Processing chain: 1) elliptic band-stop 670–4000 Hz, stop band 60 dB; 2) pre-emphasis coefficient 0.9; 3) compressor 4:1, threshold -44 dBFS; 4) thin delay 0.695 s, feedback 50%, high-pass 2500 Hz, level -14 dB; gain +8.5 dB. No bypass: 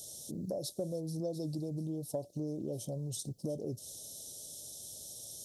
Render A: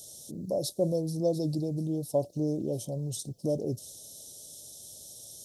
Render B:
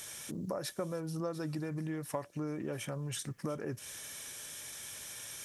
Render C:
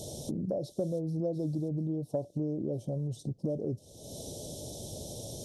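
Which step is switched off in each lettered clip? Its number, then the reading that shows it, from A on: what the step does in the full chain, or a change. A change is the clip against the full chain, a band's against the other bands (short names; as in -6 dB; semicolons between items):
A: 3, crest factor change +2.5 dB; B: 1, 1 kHz band +9.5 dB; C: 2, 8 kHz band -7.5 dB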